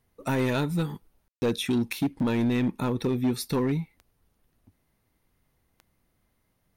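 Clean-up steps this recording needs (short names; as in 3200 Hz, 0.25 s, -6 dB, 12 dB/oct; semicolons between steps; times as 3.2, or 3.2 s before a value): clip repair -20 dBFS; de-click; room tone fill 1.28–1.42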